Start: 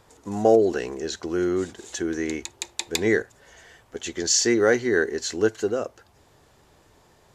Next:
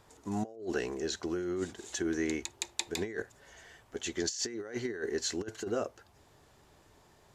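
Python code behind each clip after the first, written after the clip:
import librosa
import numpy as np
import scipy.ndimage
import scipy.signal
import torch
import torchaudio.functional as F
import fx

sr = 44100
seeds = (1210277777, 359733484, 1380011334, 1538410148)

y = fx.notch(x, sr, hz=500.0, q=14.0)
y = fx.over_compress(y, sr, threshold_db=-25.0, ratio=-0.5)
y = y * 10.0 ** (-8.0 / 20.0)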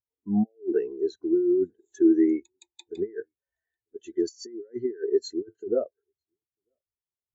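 y = x + 10.0 ** (-22.5 / 20.0) * np.pad(x, (int(945 * sr / 1000.0), 0))[:len(x)]
y = fx.spectral_expand(y, sr, expansion=2.5)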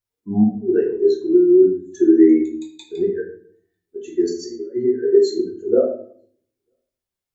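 y = fx.room_shoebox(x, sr, seeds[0], volume_m3=66.0, walls='mixed', distance_m=0.91)
y = y * 10.0 ** (4.0 / 20.0)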